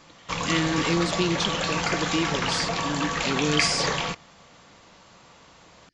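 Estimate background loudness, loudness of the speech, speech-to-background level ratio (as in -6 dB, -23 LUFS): -26.5 LUFS, -28.0 LUFS, -1.5 dB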